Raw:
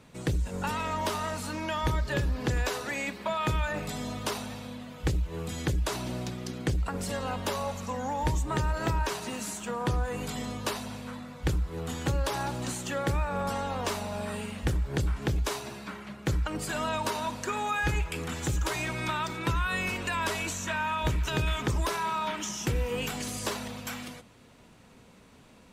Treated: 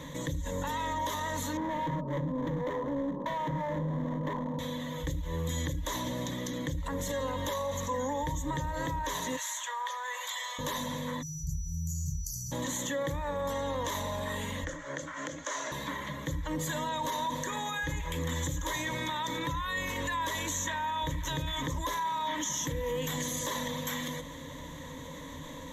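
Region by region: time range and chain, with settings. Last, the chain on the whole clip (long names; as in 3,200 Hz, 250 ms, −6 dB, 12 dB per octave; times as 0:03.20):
0:01.57–0:04.59: elliptic band-pass filter 150–1,000 Hz + low-shelf EQ 390 Hz +9.5 dB + gain into a clipping stage and back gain 33 dB
0:09.36–0:10.59: Bessel high-pass filter 1,200 Hz, order 8 + high-shelf EQ 6,700 Hz −9.5 dB
0:11.21–0:12.51: downward compressor 2.5 to 1, threshold −32 dBFS + steady tone 5,900 Hz −50 dBFS + linear-phase brick-wall band-stop 180–4,400 Hz
0:14.64–0:15.72: downward compressor, threshold −32 dBFS + wrap-around overflow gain 25 dB + loudspeaker in its box 390–7,400 Hz, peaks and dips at 430 Hz −6 dB, 620 Hz +6 dB, 920 Hz −6 dB, 1,400 Hz +10 dB, 3,700 Hz −9 dB, 6,500 Hz +3 dB
whole clip: brickwall limiter −27 dBFS; EQ curve with evenly spaced ripples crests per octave 1.1, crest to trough 16 dB; envelope flattener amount 50%; level −3.5 dB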